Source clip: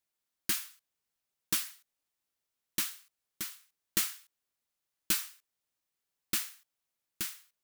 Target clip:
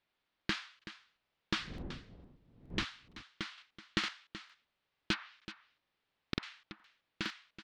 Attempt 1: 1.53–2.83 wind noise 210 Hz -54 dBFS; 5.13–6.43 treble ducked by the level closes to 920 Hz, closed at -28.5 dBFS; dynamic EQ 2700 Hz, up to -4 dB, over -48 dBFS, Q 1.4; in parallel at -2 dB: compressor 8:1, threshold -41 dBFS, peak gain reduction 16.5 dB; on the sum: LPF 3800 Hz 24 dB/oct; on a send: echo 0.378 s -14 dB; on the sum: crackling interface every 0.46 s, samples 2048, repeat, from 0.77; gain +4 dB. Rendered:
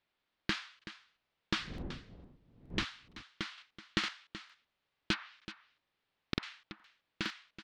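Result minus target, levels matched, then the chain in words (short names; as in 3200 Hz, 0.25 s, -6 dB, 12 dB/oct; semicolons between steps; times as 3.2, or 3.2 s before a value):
compressor: peak gain reduction -6.5 dB
1.53–2.83 wind noise 210 Hz -54 dBFS; 5.13–6.43 treble ducked by the level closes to 920 Hz, closed at -28.5 dBFS; dynamic EQ 2700 Hz, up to -4 dB, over -48 dBFS, Q 1.4; in parallel at -2 dB: compressor 8:1, threshold -48.5 dBFS, peak gain reduction 23 dB; on the sum: LPF 3800 Hz 24 dB/oct; on a send: echo 0.378 s -14 dB; on the sum: crackling interface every 0.46 s, samples 2048, repeat, from 0.77; gain +4 dB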